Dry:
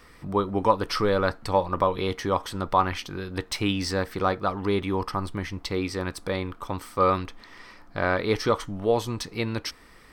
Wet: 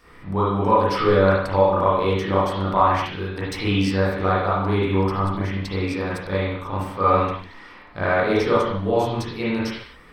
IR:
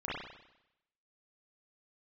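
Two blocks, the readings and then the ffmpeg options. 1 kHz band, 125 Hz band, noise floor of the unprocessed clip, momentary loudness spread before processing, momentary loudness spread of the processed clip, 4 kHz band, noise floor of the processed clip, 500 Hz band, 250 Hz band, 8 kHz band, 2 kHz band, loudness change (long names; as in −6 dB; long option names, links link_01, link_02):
+5.5 dB, +7.5 dB, −51 dBFS, 9 LU, 10 LU, +1.0 dB, −45 dBFS, +5.5 dB, +5.5 dB, −4.0 dB, +5.0 dB, +5.5 dB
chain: -filter_complex "[1:a]atrim=start_sample=2205,afade=type=out:start_time=0.32:duration=0.01,atrim=end_sample=14553[link_01];[0:a][link_01]afir=irnorm=-1:irlink=0"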